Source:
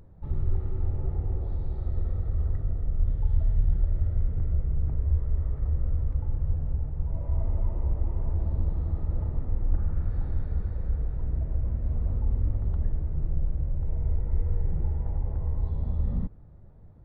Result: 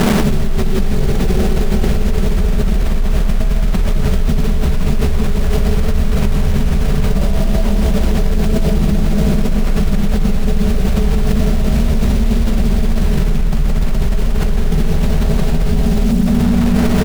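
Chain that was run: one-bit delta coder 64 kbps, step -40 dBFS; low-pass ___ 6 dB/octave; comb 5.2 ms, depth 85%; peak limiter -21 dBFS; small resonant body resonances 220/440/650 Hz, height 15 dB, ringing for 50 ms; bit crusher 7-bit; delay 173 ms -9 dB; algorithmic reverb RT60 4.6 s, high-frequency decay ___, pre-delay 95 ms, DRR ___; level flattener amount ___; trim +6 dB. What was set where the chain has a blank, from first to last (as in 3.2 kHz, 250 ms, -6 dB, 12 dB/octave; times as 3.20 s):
1.1 kHz, 0.6×, 4.5 dB, 100%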